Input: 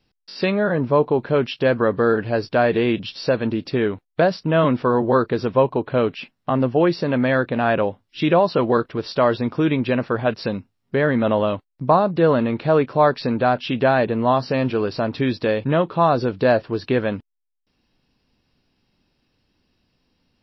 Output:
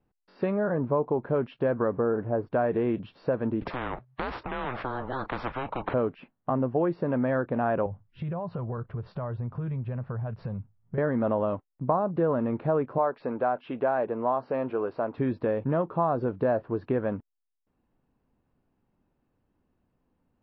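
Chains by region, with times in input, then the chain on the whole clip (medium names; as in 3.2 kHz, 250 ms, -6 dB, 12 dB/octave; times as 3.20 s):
1.92–2.47 s: zero-crossing glitches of -21 dBFS + low-pass 1.3 kHz
3.61–5.94 s: frequency shift -130 Hz + spectrum-flattening compressor 10:1
7.86–10.98 s: resonant low shelf 190 Hz +12.5 dB, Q 1.5 + band-stop 300 Hz, Q 5.1 + compression 5:1, threshold -26 dBFS
12.98–15.18 s: tone controls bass -13 dB, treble -3 dB + band-stop 1.8 kHz, Q 24
whole clip: Chebyshev low-pass 1.1 kHz, order 2; compression 2.5:1, threshold -19 dBFS; trim -4 dB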